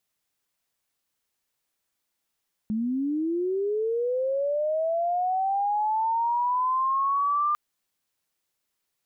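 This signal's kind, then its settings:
glide linear 210 Hz → 1,200 Hz −24 dBFS → −21 dBFS 4.85 s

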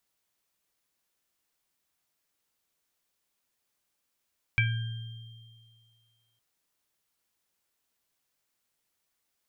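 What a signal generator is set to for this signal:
inharmonic partials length 1.81 s, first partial 114 Hz, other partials 1,600/2,330/3,180 Hz, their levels −6.5/4/−15 dB, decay 1.92 s, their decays 0.73/0.24/2.81 s, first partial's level −23 dB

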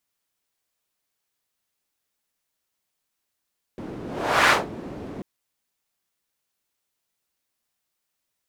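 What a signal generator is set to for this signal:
pass-by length 1.44 s, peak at 0:00.72, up 0.50 s, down 0.19 s, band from 290 Hz, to 1,500 Hz, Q 1.2, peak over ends 19 dB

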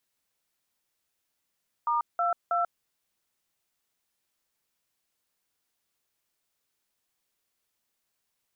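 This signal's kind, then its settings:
touch tones "*22", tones 139 ms, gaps 181 ms, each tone −26 dBFS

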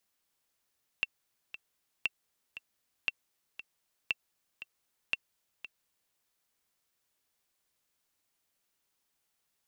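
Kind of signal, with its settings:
click track 117 BPM, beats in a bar 2, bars 5, 2,700 Hz, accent 13.5 dB −15.5 dBFS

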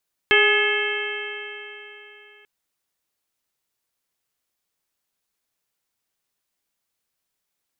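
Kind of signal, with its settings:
stiff-string partials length 2.14 s, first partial 413 Hz, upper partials −9.5/−8/1/0.5/−1/−2 dB, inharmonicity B 0.0036, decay 3.43 s, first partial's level −18.5 dB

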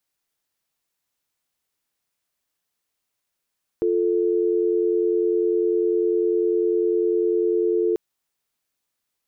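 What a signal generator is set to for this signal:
call progress tone dial tone, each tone −20.5 dBFS 4.14 s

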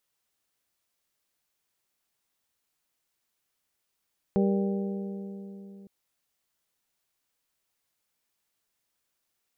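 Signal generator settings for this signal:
struck metal bell, length 1.51 s, lowest mode 197 Hz, modes 5, decay 3.68 s, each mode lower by 4 dB, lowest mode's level −21.5 dB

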